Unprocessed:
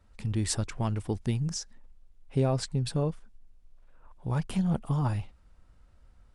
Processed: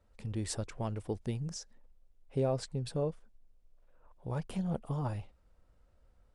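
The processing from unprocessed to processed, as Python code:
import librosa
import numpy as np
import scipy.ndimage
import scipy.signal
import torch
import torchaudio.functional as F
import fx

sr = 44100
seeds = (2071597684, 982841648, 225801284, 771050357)

y = fx.peak_eq(x, sr, hz=520.0, db=8.0, octaves=0.97)
y = F.gain(torch.from_numpy(y), -8.0).numpy()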